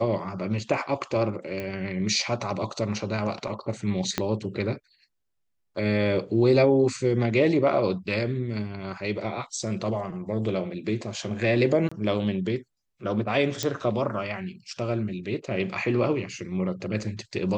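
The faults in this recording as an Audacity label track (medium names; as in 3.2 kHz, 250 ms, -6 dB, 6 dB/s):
1.600000	1.600000	pop -19 dBFS
4.180000	4.180000	pop -9 dBFS
11.890000	11.910000	dropout 25 ms
13.630000	13.630000	pop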